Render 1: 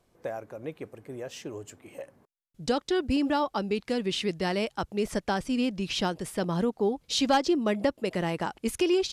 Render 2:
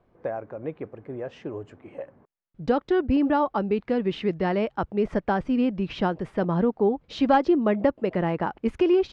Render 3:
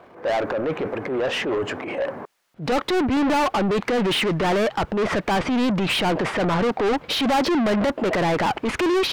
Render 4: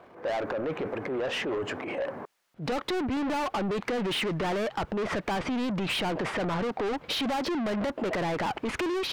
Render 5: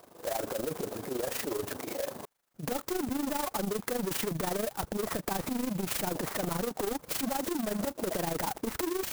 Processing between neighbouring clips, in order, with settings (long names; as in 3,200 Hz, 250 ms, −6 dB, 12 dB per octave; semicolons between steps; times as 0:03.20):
low-pass filter 1,700 Hz 12 dB per octave; level +4.5 dB
transient designer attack −9 dB, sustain +6 dB; mid-hump overdrive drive 32 dB, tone 4,600 Hz, clips at −11.5 dBFS; level −2.5 dB
downward compressor, threshold −23 dBFS, peak gain reduction 6 dB; level −4.5 dB
amplitude modulation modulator 25 Hz, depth 60%; converter with an unsteady clock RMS 0.095 ms